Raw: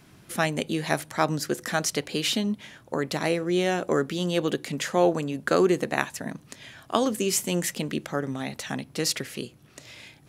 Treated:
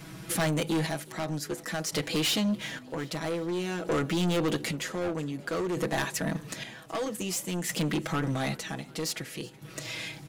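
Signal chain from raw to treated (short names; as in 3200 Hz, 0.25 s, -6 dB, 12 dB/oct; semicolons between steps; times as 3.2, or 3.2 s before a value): comb 6.2 ms, depth 98%; in parallel at +0.5 dB: compressor, threshold -33 dBFS, peak gain reduction 19 dB; on the sum: hard clip -16.5 dBFS, distortion -10 dB; chopper 0.52 Hz, depth 65%, duty 45%; soft clip -23.5 dBFS, distortion -11 dB; on a send: frequency-shifting echo 0.372 s, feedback 62%, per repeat +47 Hz, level -23 dB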